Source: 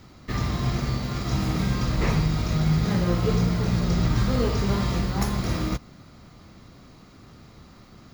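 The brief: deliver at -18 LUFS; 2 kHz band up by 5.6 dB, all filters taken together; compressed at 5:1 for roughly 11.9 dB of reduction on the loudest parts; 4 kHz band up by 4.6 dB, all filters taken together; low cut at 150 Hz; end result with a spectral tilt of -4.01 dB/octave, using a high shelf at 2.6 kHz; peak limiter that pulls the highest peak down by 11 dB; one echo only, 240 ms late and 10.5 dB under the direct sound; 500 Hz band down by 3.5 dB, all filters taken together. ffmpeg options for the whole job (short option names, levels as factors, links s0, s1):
-af "highpass=150,equalizer=f=500:t=o:g=-4.5,equalizer=f=2000:t=o:g=7,highshelf=f=2600:g=-5,equalizer=f=4000:t=o:g=8,acompressor=threshold=0.0178:ratio=5,alimiter=level_in=3.55:limit=0.0631:level=0:latency=1,volume=0.282,aecho=1:1:240:0.299,volume=20"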